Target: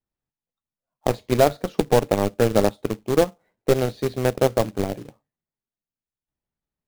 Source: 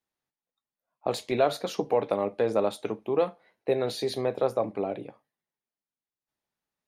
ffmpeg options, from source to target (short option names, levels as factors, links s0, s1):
-af "aeval=exprs='0.266*(cos(1*acos(clip(val(0)/0.266,-1,1)))-cos(1*PI/2))+0.0237*(cos(3*acos(clip(val(0)/0.266,-1,1)))-cos(3*PI/2))+0.0168*(cos(7*acos(clip(val(0)/0.266,-1,1)))-cos(7*PI/2))':c=same,aemphasis=mode=reproduction:type=riaa,acrusher=bits=3:mode=log:mix=0:aa=0.000001,volume=1.88"